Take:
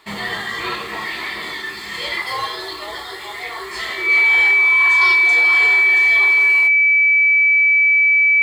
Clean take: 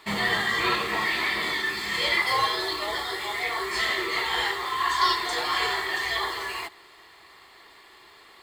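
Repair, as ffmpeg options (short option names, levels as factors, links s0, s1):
-af "bandreject=f=2300:w=30"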